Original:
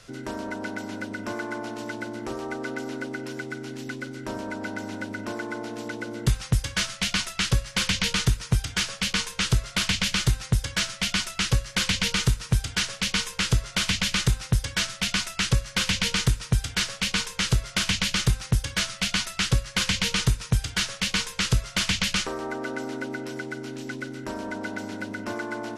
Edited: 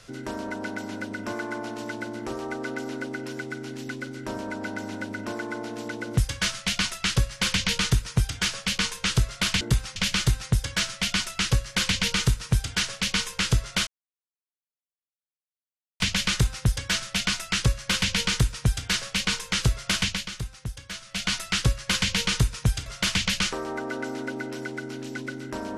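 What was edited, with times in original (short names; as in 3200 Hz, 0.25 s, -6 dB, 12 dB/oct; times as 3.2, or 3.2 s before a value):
6.17–6.52 move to 9.96
13.87 insert silence 2.13 s
17.88–19.2 dip -11 dB, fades 0.28 s
20.73–21.6 cut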